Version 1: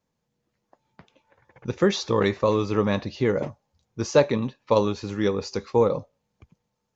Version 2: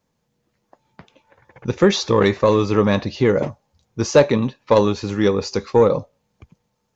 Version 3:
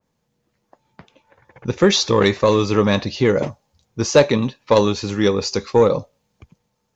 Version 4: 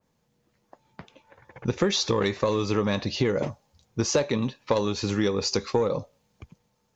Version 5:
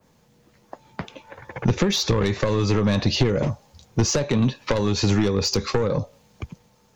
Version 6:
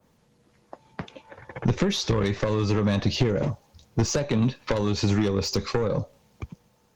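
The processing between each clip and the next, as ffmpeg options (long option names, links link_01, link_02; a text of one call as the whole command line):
ffmpeg -i in.wav -af "acontrast=73" out.wav
ffmpeg -i in.wav -af "adynamicequalizer=threshold=0.0224:dfrequency=2400:dqfactor=0.7:tfrequency=2400:tqfactor=0.7:attack=5:release=100:ratio=0.375:range=3:mode=boostabove:tftype=highshelf" out.wav
ffmpeg -i in.wav -af "acompressor=threshold=-21dB:ratio=6" out.wav
ffmpeg -i in.wav -filter_complex "[0:a]aeval=exprs='0.398*(cos(1*acos(clip(val(0)/0.398,-1,1)))-cos(1*PI/2))+0.178*(cos(5*acos(clip(val(0)/0.398,-1,1)))-cos(5*PI/2))':channel_layout=same,acrossover=split=170[link_01][link_02];[link_02]acompressor=threshold=-23dB:ratio=6[link_03];[link_01][link_03]amix=inputs=2:normalize=0,volume=2dB" out.wav
ffmpeg -i in.wav -af "volume=-2.5dB" -ar 48000 -c:a libopus -b:a 24k out.opus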